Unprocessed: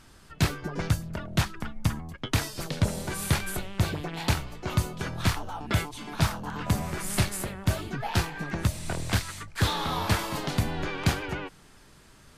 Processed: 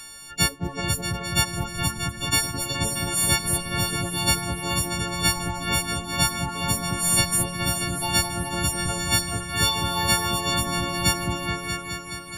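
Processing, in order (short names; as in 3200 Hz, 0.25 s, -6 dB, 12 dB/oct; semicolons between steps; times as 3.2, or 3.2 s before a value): frequency quantiser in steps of 4 st; reverb removal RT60 0.51 s; repeats that get brighter 0.212 s, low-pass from 750 Hz, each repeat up 2 oct, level -3 dB; mismatched tape noise reduction encoder only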